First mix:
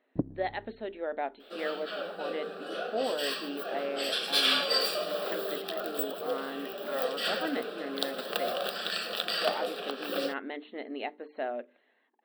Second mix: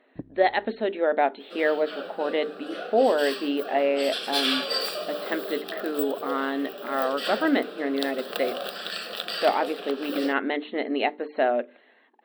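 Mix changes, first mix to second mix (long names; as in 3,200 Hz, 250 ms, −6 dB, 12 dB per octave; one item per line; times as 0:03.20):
speech +11.5 dB
first sound −7.5 dB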